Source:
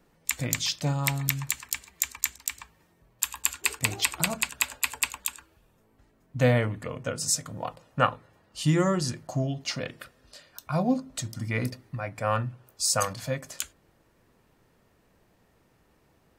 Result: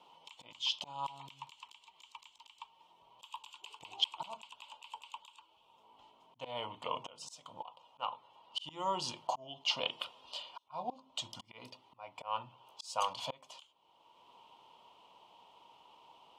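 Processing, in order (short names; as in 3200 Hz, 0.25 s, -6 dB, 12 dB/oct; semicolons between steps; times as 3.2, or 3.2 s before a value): added harmonics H 4 -13 dB, 6 -21 dB, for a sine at -2 dBFS; auto swell 0.741 s; double band-pass 1700 Hz, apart 1.7 oct; gain +17.5 dB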